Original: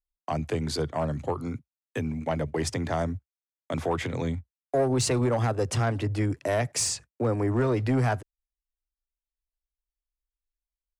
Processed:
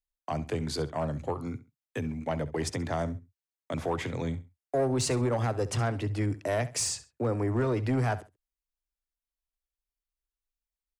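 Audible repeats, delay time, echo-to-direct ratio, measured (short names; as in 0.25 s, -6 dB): 2, 67 ms, -16.0 dB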